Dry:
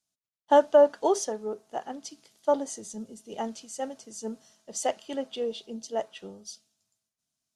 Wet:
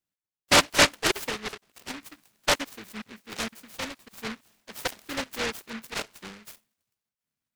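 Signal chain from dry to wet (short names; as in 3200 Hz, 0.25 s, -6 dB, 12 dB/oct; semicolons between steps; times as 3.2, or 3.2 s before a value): random spectral dropouts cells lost 23%; LPF 5900 Hz 24 dB/oct; noise-modulated delay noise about 1700 Hz, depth 0.41 ms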